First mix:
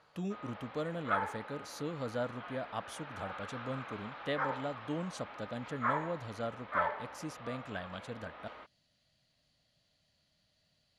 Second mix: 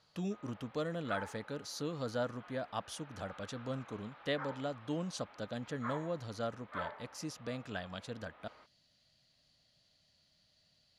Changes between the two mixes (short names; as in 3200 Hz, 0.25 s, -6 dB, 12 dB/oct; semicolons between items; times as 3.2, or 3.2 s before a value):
speech: add bell 5000 Hz +6 dB 0.95 oct; background -9.5 dB